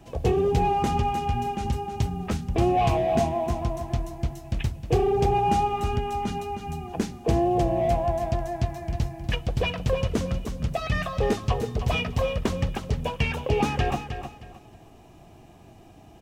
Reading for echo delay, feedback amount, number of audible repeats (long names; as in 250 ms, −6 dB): 312 ms, 26%, 3